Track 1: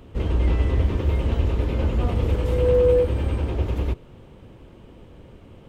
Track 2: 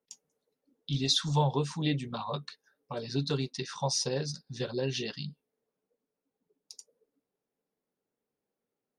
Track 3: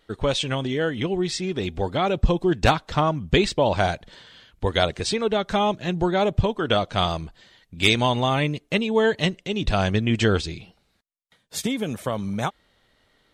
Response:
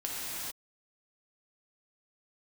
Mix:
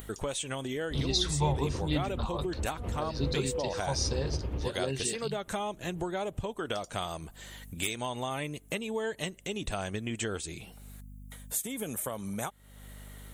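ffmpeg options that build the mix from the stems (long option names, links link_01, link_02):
-filter_complex "[0:a]highshelf=frequency=4000:gain=-10,adelay=750,volume=-0.5dB[link_01];[1:a]adelay=50,volume=-2dB[link_02];[2:a]bass=frequency=250:gain=-5,treble=frequency=4000:gain=-4,aexciter=amount=12.6:drive=3.5:freq=7000,volume=-3.5dB,asplit=2[link_03][link_04];[link_04]apad=whole_len=283780[link_05];[link_01][link_05]sidechaincompress=threshold=-36dB:ratio=8:attack=16:release=147[link_06];[link_06][link_03]amix=inputs=2:normalize=0,aeval=exprs='val(0)+0.00126*(sin(2*PI*50*n/s)+sin(2*PI*2*50*n/s)/2+sin(2*PI*3*50*n/s)/3+sin(2*PI*4*50*n/s)/4+sin(2*PI*5*50*n/s)/5)':channel_layout=same,acompressor=threshold=-32dB:ratio=4,volume=0dB[link_07];[link_02][link_07]amix=inputs=2:normalize=0,acompressor=mode=upward:threshold=-35dB:ratio=2.5"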